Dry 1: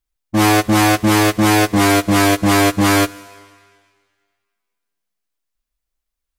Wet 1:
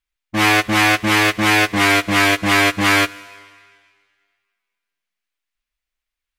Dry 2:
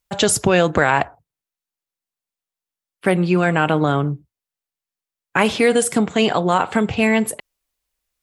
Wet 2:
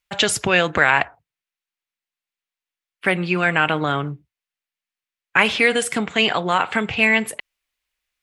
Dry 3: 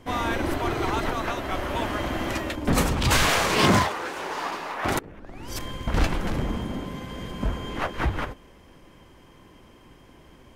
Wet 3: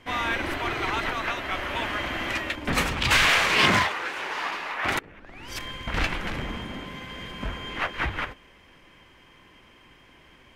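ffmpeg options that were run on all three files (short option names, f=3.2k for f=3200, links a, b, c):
-af "equalizer=f=2.3k:t=o:w=2:g=12.5,volume=-6.5dB"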